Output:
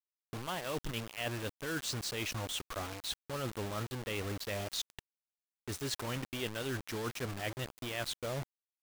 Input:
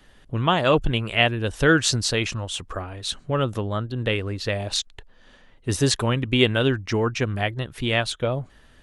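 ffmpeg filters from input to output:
-af "lowshelf=f=200:g=-4,areverse,acompressor=threshold=-29dB:ratio=12,areverse,acrusher=bits=5:mix=0:aa=0.000001,volume=-5.5dB"

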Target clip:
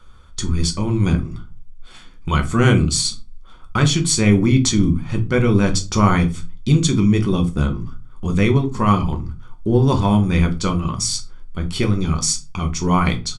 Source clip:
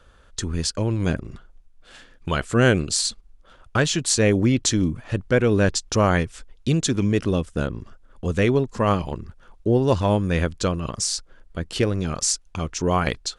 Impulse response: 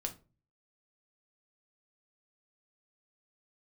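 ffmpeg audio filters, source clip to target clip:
-filter_complex "[0:a]aecho=1:1:0.9:0.6[a];[1:a]atrim=start_sample=2205[b];[a][b]afir=irnorm=-1:irlink=0,volume=2dB"

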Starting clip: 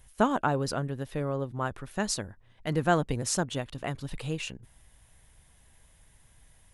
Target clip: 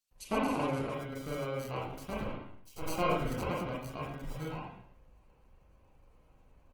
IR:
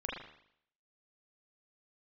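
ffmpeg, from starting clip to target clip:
-filter_complex "[0:a]acrusher=samples=25:mix=1:aa=0.000001,asettb=1/sr,asplit=3[a][b][c];[a]atrim=end=2.134[d];[b]atrim=start=2.13:end=2.87,asetpts=PTS-STARTPTS,afade=t=in:d=0.004:c=qsin,afade=t=out:st=0.736:d=0.004:c=qsin,aeval=exprs='abs(val(0))':c=same[e];[c]atrim=start=2.866[f];[d][e]acrossfade=d=0.004:c1=hsin:c2=qsin[g];[g][f]acrossfade=d=0.004:c1=qsin:c2=hsin,acrossover=split=3800[h][i];[h]adelay=110[j];[j][i]amix=inputs=2:normalize=0[k];[1:a]atrim=start_sample=2205,afade=t=out:st=0.44:d=0.01,atrim=end_sample=19845[l];[k][l]afir=irnorm=-1:irlink=0,volume=-7.5dB" -ar 48000 -c:a libopus -b:a 20k

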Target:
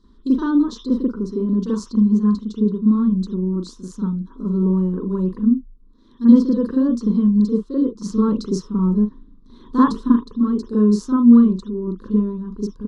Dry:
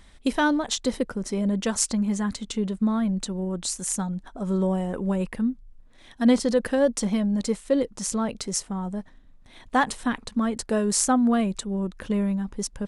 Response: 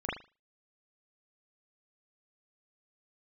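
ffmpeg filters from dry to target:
-filter_complex "[0:a]lowshelf=f=110:g=9,asettb=1/sr,asplit=3[a][b][c];[a]atrim=end=8.024[d];[b]atrim=start=8.02:end=10.08,asetpts=PTS-STARTPTS,afade=t=in:d=0.004:c=qsin,afade=t=out:st=2.056:d=0.004:c=qsin,acontrast=39[e];[c]atrim=start=10.076[f];[d][e]acrossfade=d=0.004:c1=hsin:c2=qsin[g];[g][f]acrossfade=d=0.004:c1=qsin:c2=hsin,firequalizer=gain_entry='entry(130,0);entry(220,15);entry(440,11);entry(710,-23);entry(1000,10);entry(2200,-19);entry(4100,11);entry(8900,-8)':delay=0.05:min_phase=1[h];[1:a]atrim=start_sample=2205,atrim=end_sample=3528[i];[h][i]afir=irnorm=-1:irlink=0,volume=-13.5dB"

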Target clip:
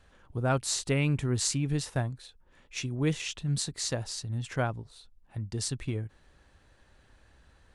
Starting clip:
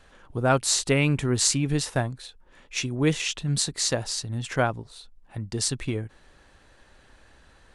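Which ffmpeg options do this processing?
-af "equalizer=f=79:t=o:w=2.2:g=7,volume=-7.5dB"

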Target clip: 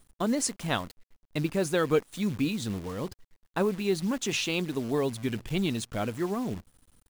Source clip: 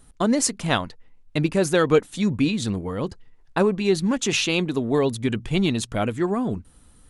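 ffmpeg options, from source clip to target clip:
-af "acrusher=bits=7:dc=4:mix=0:aa=0.000001,volume=-7dB"

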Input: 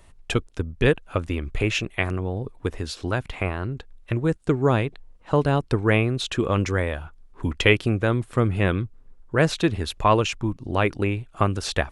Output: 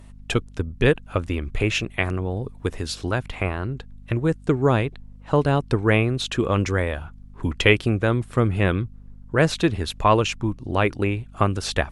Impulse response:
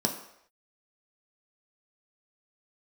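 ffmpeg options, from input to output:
-filter_complex "[0:a]asettb=1/sr,asplit=3[a][b][c];[a]atrim=end=2.304[d];[b]atrim=start=2.3:end=3.09,asetpts=PTS-STARTPTS,afade=t=in:d=0.004:c=qsin,afade=t=out:st=0.786:d=0.004:c=qsin,highshelf=f=4.5k:g=5[e];[c]atrim=start=3.086[f];[d][e]acrossfade=d=0.004:c1=hsin:c2=qsin[g];[g][f]acrossfade=d=0.004:c1=qsin:c2=hsin,aeval=exprs='val(0)+0.00631*(sin(2*PI*50*n/s)+sin(2*PI*2*50*n/s)/2+sin(2*PI*3*50*n/s)/3+sin(2*PI*4*50*n/s)/4+sin(2*PI*5*50*n/s)/5)':c=same,volume=1.5dB" -ar 44100 -c:a libmp3lame -b:a 96k

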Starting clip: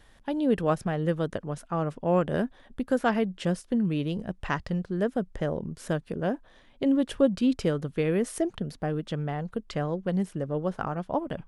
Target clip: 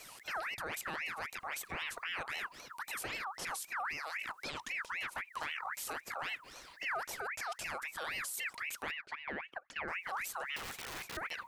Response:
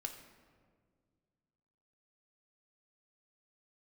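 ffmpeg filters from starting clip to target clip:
-filter_complex "[0:a]acompressor=threshold=-30dB:ratio=4,crystalizer=i=7:c=0,asplit=3[a][b][c];[a]afade=t=out:st=5.01:d=0.02[d];[b]aeval=exprs='(tanh(35.5*val(0)+0.45)-tanh(0.45))/35.5':c=same,afade=t=in:st=5.01:d=0.02,afade=t=out:st=5.51:d=0.02[e];[c]afade=t=in:st=5.51:d=0.02[f];[d][e][f]amix=inputs=3:normalize=0,asettb=1/sr,asplit=3[g][h][i];[g]atrim=end=8.914[j];[h]atrim=start=8.91:end=9.88,asetpts=PTS-STARTPTS,afade=t=in:d=0.004:c=qsin,afade=t=out:st=0.966:d=0.004:c=qsin,bandpass=f=590:t=q:w=2.1:csg=0[k];[i]atrim=start=9.876[l];[j][k]acrossfade=d=0.004:c1=hsin:c2=qsin[m];[m][l]acrossfade=d=0.004:c1=qsin:c2=hsin,alimiter=level_in=6.5dB:limit=-24dB:level=0:latency=1:release=12,volume=-6.5dB,asettb=1/sr,asplit=3[n][o][p];[n]atrim=end=10.564[q];[o]atrim=start=10.56:end=11.17,asetpts=PTS-STARTPTS,afade=t=in:d=0.004:c=qsin,afade=t=out:st=0.606:d=0.004:c=qsin,aeval=exprs='(mod(66.8*val(0)+1,2)-1)/66.8':c=same[r];[p]atrim=start=11.166[s];[q][r]acrossfade=d=0.004:c1=hsin:c2=qsin[t];[t][s]acrossfade=d=0.004:c1=qsin:c2=hsin,asplit=2[u][v];[1:a]atrim=start_sample=2205,atrim=end_sample=3969[w];[v][w]afir=irnorm=-1:irlink=0,volume=-15dB[x];[u][x]amix=inputs=2:normalize=0,aeval=exprs='val(0)*sin(2*PI*1700*n/s+1700*0.45/3.8*sin(2*PI*3.8*n/s))':c=same"

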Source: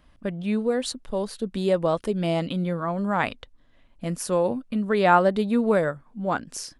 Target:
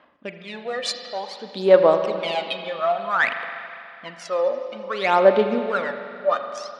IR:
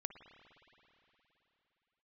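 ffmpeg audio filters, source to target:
-filter_complex "[0:a]asetnsamples=n=441:p=0,asendcmd='3.15 highshelf g 4',highshelf=f=3k:g=11,adynamicsmooth=sensitivity=3:basefreq=2.6k,aphaser=in_gain=1:out_gain=1:delay=1.7:decay=0.77:speed=0.56:type=sinusoidal,highpass=500,lowpass=4.8k[a];[1:a]atrim=start_sample=2205,asetrate=61740,aresample=44100[b];[a][b]afir=irnorm=-1:irlink=0,volume=6.5dB"

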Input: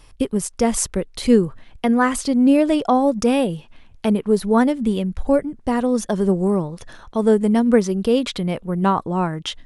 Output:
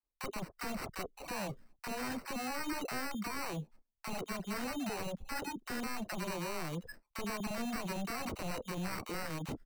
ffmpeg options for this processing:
-filter_complex "[0:a]afftdn=nr=20:nf=-30,acrossover=split=170 6200:gain=0.112 1 0.178[a][b][c];[a][b][c]amix=inputs=3:normalize=0,agate=range=-26dB:threshold=-52dB:ratio=16:detection=peak,highshelf=f=4.3k:g=-11.5,areverse,acompressor=threshold=-24dB:ratio=16,areverse,alimiter=level_in=4.5dB:limit=-24dB:level=0:latency=1:release=401,volume=-4.5dB,acrusher=samples=13:mix=1:aa=0.000001,aeval=exprs='0.0119*(abs(mod(val(0)/0.0119+3,4)-2)-1)':c=same,acrossover=split=840[d][e];[d]adelay=30[f];[f][e]amix=inputs=2:normalize=0,volume=6dB"

